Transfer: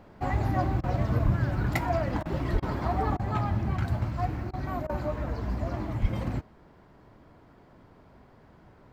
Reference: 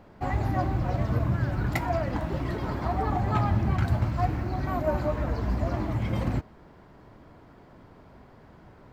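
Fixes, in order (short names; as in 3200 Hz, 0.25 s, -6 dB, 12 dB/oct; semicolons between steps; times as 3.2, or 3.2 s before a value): de-plosive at 1.24/2.52/6.01; interpolate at 0.81/2.23/2.6/3.17/4.51/4.87, 23 ms; gain correction +3.5 dB, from 3.15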